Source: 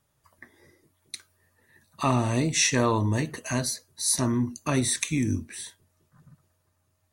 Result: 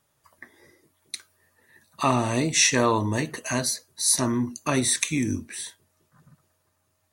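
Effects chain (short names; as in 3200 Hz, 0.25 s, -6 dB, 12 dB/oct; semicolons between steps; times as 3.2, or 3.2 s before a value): low shelf 160 Hz -9.5 dB; gain +3.5 dB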